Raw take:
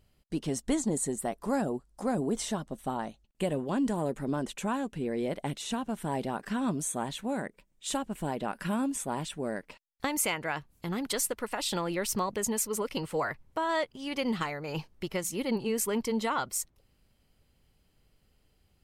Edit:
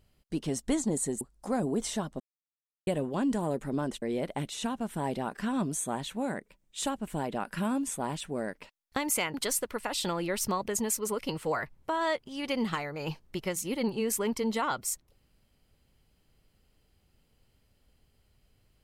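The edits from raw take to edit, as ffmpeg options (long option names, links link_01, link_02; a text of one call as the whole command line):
ffmpeg -i in.wav -filter_complex "[0:a]asplit=6[link_01][link_02][link_03][link_04][link_05][link_06];[link_01]atrim=end=1.212[link_07];[link_02]atrim=start=1.758:end=2.75,asetpts=PTS-STARTPTS,afade=type=out:start_time=0.988:duration=0.004:curve=hsin[link_08];[link_03]atrim=start=2.75:end=3.42,asetpts=PTS-STARTPTS,volume=0[link_09];[link_04]atrim=start=3.42:end=4.572,asetpts=PTS-STARTPTS,afade=type=in:duration=0.004:curve=hsin[link_10];[link_05]atrim=start=5.098:end=10.422[link_11];[link_06]atrim=start=11.018[link_12];[link_08][link_09][link_10]concat=n=3:v=0:a=1[link_13];[link_07][link_13]acrossfade=duration=0.004:curve1=hsin:curve2=hsin[link_14];[link_14][link_11]acrossfade=duration=0.004:curve1=hsin:curve2=hsin[link_15];[link_15][link_12]acrossfade=duration=0.004:curve1=hsin:curve2=hsin" out.wav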